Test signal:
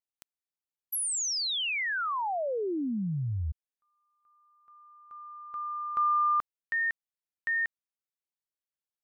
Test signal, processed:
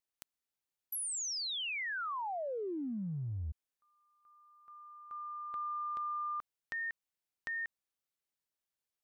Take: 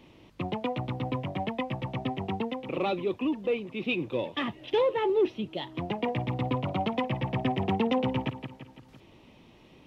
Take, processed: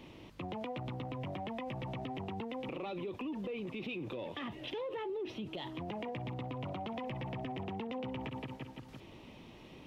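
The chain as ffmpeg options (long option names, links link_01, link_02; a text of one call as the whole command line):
ffmpeg -i in.wav -af "acompressor=threshold=-38dB:ratio=12:attack=0.97:release=63:knee=1:detection=peak,volume=2dB" out.wav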